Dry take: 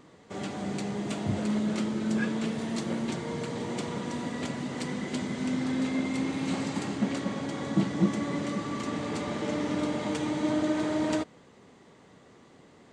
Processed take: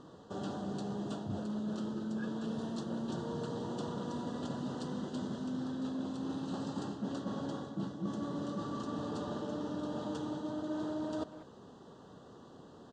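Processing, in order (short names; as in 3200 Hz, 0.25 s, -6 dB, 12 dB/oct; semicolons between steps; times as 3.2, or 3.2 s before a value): reverse; compressor 10:1, threshold -36 dBFS, peak gain reduction 18 dB; reverse; Butterworth band-stop 2200 Hz, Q 1.5; air absorption 82 m; speakerphone echo 0.19 s, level -13 dB; gain +1.5 dB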